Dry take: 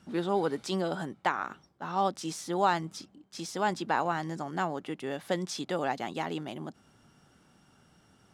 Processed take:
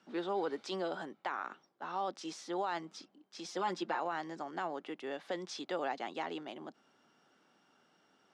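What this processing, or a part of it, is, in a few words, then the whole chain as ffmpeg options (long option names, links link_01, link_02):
DJ mixer with the lows and highs turned down: -filter_complex "[0:a]highpass=140,acrossover=split=250 6400:gain=0.141 1 0.0891[link_01][link_02][link_03];[link_01][link_02][link_03]amix=inputs=3:normalize=0,alimiter=limit=-22dB:level=0:latency=1:release=24,asettb=1/sr,asplit=3[link_04][link_05][link_06];[link_04]atrim=end=3.444[link_07];[link_05]atrim=start=3.44:end=4,asetpts=PTS-STARTPTS,afade=type=in:duration=0.004:curve=qsin,afade=type=out:start_time=0.556:duration=0.004:curve=qsin,aecho=1:1:5.7:0.78,atrim=end_sample=24696[link_08];[link_06]atrim=start=3.996[link_09];[link_07][link_08]acrossfade=duration=0.004:curve1=hsin:curve2=qsin[link_10];[link_10][link_09]acrossfade=duration=0.004:curve1=qsin:curve2=hsin,volume=-4dB"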